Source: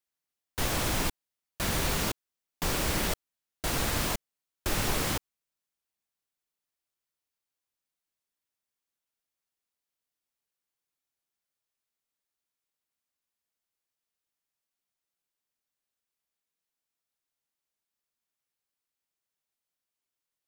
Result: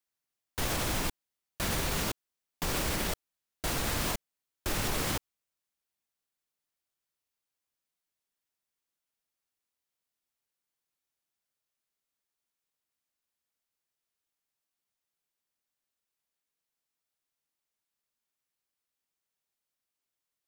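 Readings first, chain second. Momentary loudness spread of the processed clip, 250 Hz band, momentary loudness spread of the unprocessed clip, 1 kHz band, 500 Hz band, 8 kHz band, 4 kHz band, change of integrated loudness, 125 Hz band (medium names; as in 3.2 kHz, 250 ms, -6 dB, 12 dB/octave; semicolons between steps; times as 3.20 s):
8 LU, -2.0 dB, 9 LU, -2.0 dB, -2.0 dB, -2.0 dB, -2.0 dB, -2.5 dB, -2.5 dB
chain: peak limiter -21 dBFS, peak gain reduction 5 dB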